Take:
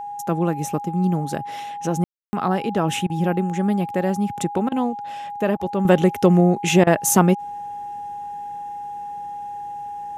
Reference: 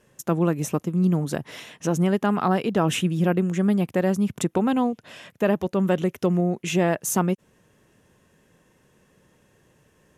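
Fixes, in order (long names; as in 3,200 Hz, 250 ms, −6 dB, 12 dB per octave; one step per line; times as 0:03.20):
notch filter 820 Hz, Q 30
ambience match 0:02.04–0:02.33
repair the gap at 0:03.07/0:04.69/0:05.57/0:06.84, 27 ms
level 0 dB, from 0:05.85 −7 dB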